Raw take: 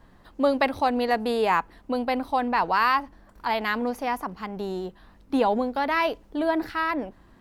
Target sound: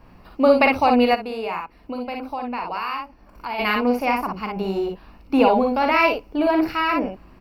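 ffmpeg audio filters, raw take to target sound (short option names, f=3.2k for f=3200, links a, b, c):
-filter_complex "[0:a]aecho=1:1:41|57:0.355|0.631,asplit=3[a][b][c];[a]afade=t=out:st=1.14:d=0.02[d];[b]acompressor=threshold=-39dB:ratio=2,afade=t=in:st=1.14:d=0.02,afade=t=out:st=3.58:d=0.02[e];[c]afade=t=in:st=3.58:d=0.02[f];[d][e][f]amix=inputs=3:normalize=0,superequalizer=11b=0.562:12b=2:13b=0.447:15b=0.355:16b=0.447,volume=4.5dB"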